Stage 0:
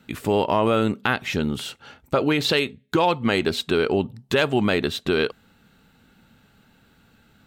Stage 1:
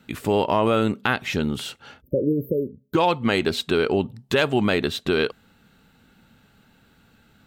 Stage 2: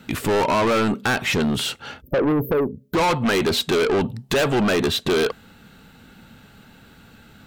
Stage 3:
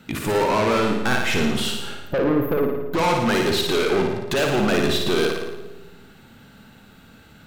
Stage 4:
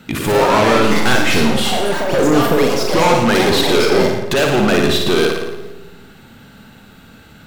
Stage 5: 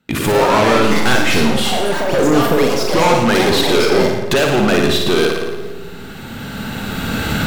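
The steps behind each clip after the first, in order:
spectral delete 2.02–2.94, 590–12000 Hz
dynamic EQ 980 Hz, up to +4 dB, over -30 dBFS, Q 0.73; soft clip -25.5 dBFS, distortion -5 dB; gain +9 dB
on a send: flutter echo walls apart 9.7 m, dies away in 0.8 s; on the sum: digital reverb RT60 1.2 s, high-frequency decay 0.25×, pre-delay 90 ms, DRR 13 dB; gain -2.5 dB
echoes that change speed 0.124 s, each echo +5 st, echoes 3, each echo -6 dB; gain +6 dB
recorder AGC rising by 12 dB/s; gate with hold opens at -24 dBFS

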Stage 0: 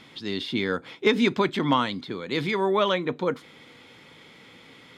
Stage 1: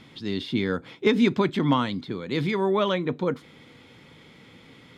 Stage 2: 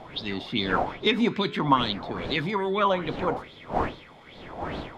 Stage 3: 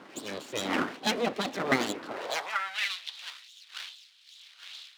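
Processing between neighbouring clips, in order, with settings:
low shelf 270 Hz +10 dB; gain -3 dB
wind noise 550 Hz -34 dBFS; flange 0.48 Hz, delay 8.4 ms, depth 8.6 ms, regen -84%; LFO bell 2.4 Hz 730–4000 Hz +16 dB
dynamic EQ 560 Hz, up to +5 dB, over -36 dBFS, Q 1.1; full-wave rectifier; high-pass sweep 270 Hz -> 3600 Hz, 2.04–2.93; gain -3.5 dB

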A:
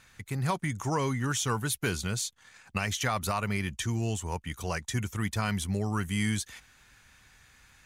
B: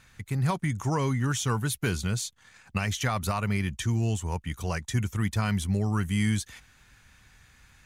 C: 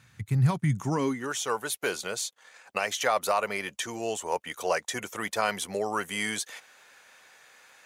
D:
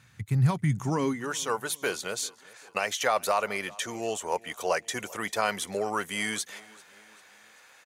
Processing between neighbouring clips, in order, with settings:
tone controls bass +5 dB, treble -1 dB
high-pass sweep 110 Hz -> 530 Hz, 0.63–1.34; vocal rider within 4 dB 2 s
feedback echo 0.393 s, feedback 51%, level -23 dB

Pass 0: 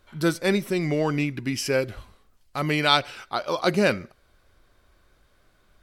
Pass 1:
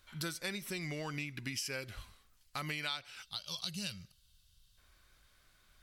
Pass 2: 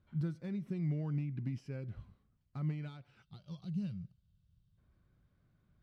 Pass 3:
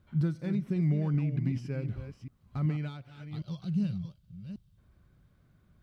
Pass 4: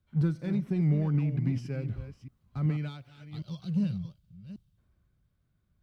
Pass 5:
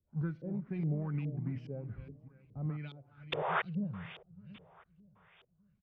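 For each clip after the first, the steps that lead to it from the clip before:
spectral gain 3.22–4.78, 210–2600 Hz -16 dB; passive tone stack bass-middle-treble 5-5-5; compressor 6:1, threshold -44 dBFS, peak gain reduction 19 dB; gain +7.5 dB
overloaded stage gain 32.5 dB; band-pass 150 Hz, Q 1.6; gain +9.5 dB
reverse delay 0.38 s, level -9.5 dB; gain +7.5 dB
in parallel at -12 dB: overloaded stage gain 31.5 dB; on the sum: three-band expander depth 40%
painted sound noise, 3.32–3.62, 370–3700 Hz -24 dBFS; feedback echo 0.61 s, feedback 45%, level -20.5 dB; LFO low-pass saw up 2.4 Hz 420–3400 Hz; gain -9 dB

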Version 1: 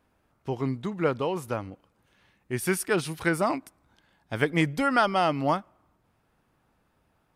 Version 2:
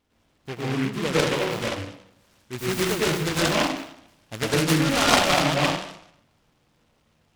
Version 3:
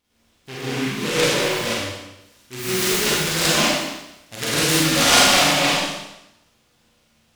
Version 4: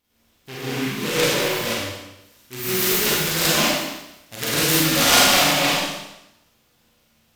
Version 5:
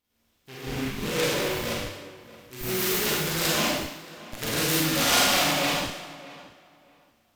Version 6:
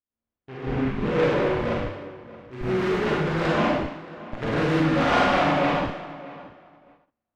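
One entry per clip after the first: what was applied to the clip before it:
plate-style reverb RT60 0.72 s, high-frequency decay 0.55×, pre-delay 90 ms, DRR -7 dB; noise-modulated delay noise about 1800 Hz, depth 0.16 ms; gain -4 dB
high shelf 2300 Hz +9.5 dB; Schroeder reverb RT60 0.82 s, combs from 31 ms, DRR -5.5 dB; gain -5.5 dB
bell 14000 Hz +13 dB 0.22 oct; gain -1 dB
in parallel at -6.5 dB: Schmitt trigger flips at -20 dBFS; on the sum: tape echo 0.624 s, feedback 22%, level -16.5 dB, low-pass 2500 Hz; gain -7.5 dB
LPF 1500 Hz 12 dB/oct; gate -58 dBFS, range -24 dB; gain +6 dB

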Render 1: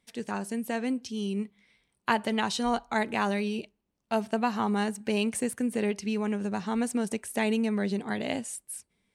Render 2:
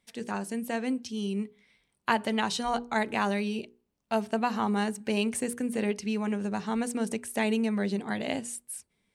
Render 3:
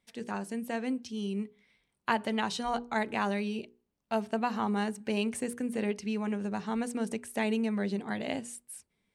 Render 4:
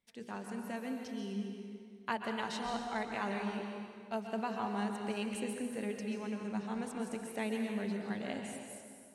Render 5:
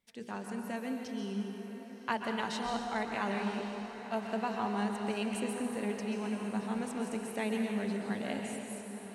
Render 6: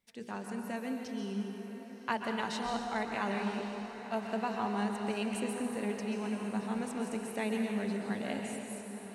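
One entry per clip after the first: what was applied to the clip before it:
notches 60/120/180/240/300/360/420/480 Hz
high shelf 5200 Hz -4.5 dB; gain -2.5 dB
plate-style reverb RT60 2.1 s, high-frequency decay 0.8×, pre-delay 0.115 s, DRR 2.5 dB; gain -7.5 dB
diffused feedback echo 1.029 s, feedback 63%, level -12 dB; gain +2.5 dB
notch 3200 Hz, Q 27

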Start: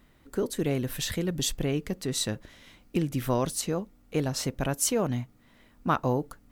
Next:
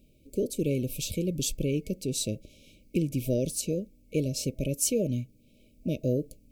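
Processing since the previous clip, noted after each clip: FFT band-reject 640–2200 Hz; bell 3400 Hz -5.5 dB 0.75 oct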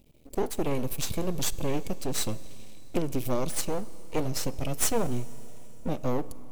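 half-wave rectifier; Schroeder reverb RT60 3.5 s, combs from 28 ms, DRR 17.5 dB; gain +5 dB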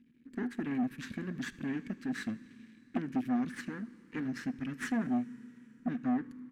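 double band-pass 640 Hz, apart 2.8 oct; echo 78 ms -22.5 dB; core saturation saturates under 470 Hz; gain +8 dB

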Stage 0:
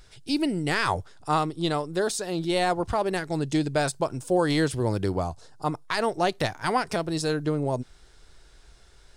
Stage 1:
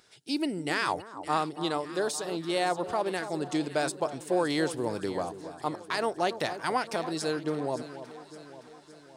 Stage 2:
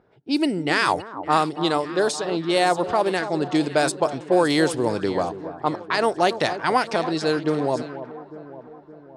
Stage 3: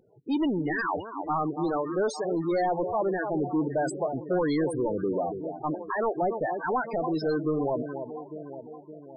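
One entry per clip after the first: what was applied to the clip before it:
HPF 220 Hz 12 dB/oct; echo with dull and thin repeats by turns 0.283 s, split 1200 Hz, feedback 73%, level -11.5 dB; gain -3.5 dB
low-pass opened by the level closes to 760 Hz, open at -24 dBFS; gain +8.5 dB
soft clip -21.5 dBFS, distortion -8 dB; loudest bins only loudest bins 16

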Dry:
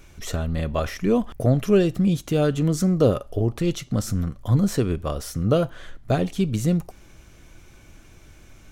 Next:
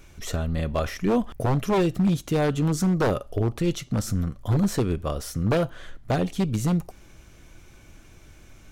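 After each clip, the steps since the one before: wavefolder -14.5 dBFS; gain -1 dB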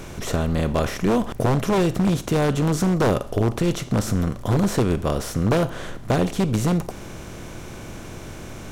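per-bin compression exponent 0.6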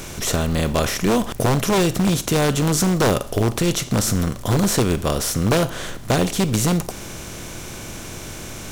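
high shelf 2700 Hz +10.5 dB; in parallel at -3 dB: short-mantissa float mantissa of 2-bit; on the sum: gain -3.5 dB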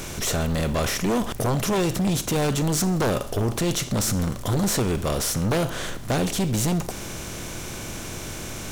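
soft clip -18.5 dBFS, distortion -11 dB

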